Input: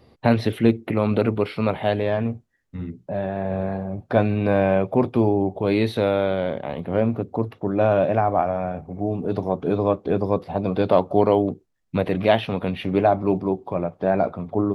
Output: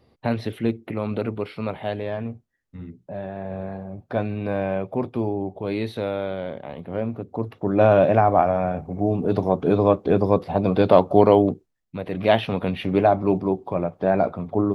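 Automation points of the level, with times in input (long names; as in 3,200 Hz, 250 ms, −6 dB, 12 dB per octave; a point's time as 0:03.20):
0:07.21 −6 dB
0:07.81 +3 dB
0:11.49 +3 dB
0:11.98 −9.5 dB
0:12.33 +0.5 dB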